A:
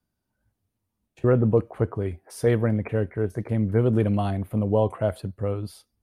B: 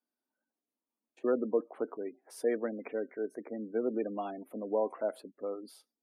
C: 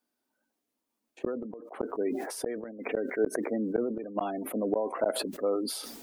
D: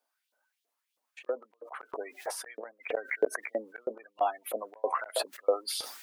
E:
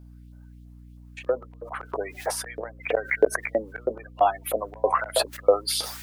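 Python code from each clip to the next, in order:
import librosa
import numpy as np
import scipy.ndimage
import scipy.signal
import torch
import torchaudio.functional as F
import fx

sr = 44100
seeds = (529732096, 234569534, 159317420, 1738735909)

y1 = fx.spec_gate(x, sr, threshold_db=-30, keep='strong')
y1 = scipy.signal.sosfilt(scipy.signal.ellip(4, 1.0, 80, 250.0, 'highpass', fs=sr, output='sos'), y1)
y1 = F.gain(torch.from_numpy(y1), -7.5).numpy()
y2 = fx.gate_flip(y1, sr, shuts_db=-25.0, range_db=-36)
y2 = fx.sustainer(y2, sr, db_per_s=43.0)
y2 = F.gain(torch.from_numpy(y2), 8.5).numpy()
y3 = fx.filter_lfo_highpass(y2, sr, shape='saw_up', hz=3.1, low_hz=510.0, high_hz=3900.0, q=2.7)
y4 = fx.add_hum(y3, sr, base_hz=60, snr_db=19)
y4 = F.gain(torch.from_numpy(y4), 8.0).numpy()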